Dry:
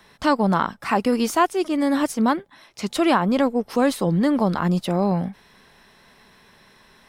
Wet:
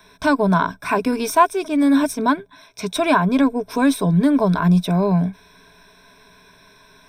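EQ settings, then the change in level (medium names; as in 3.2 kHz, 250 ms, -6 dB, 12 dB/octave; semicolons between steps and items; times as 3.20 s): rippled EQ curve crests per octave 1.6, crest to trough 14 dB; 0.0 dB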